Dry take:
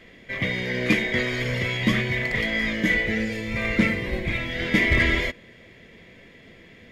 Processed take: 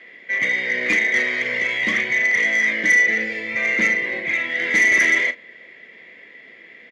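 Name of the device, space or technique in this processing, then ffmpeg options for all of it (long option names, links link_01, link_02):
intercom: -filter_complex "[0:a]highpass=340,lowpass=4800,equalizer=frequency=2000:width_type=o:width=0.4:gain=11,asoftclip=type=tanh:threshold=-11dB,asplit=2[link_01][link_02];[link_02]adelay=36,volume=-12dB[link_03];[link_01][link_03]amix=inputs=2:normalize=0"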